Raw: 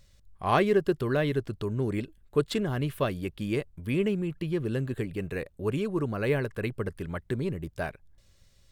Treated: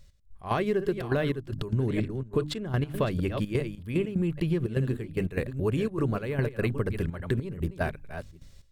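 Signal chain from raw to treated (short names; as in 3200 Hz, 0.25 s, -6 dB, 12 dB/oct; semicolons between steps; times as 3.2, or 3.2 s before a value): reverse delay 0.4 s, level -12 dB; low shelf 160 Hz +7.5 dB; notches 50/100/150/200/250/300 Hz; step gate "x..x.xxxxx.x" 148 bpm -12 dB; compressor 6:1, threshold -28 dBFS, peak gain reduction 10.5 dB; 1.87–3.46 high shelf 9200 Hz -7.5 dB; AGC gain up to 6 dB; gain -1 dB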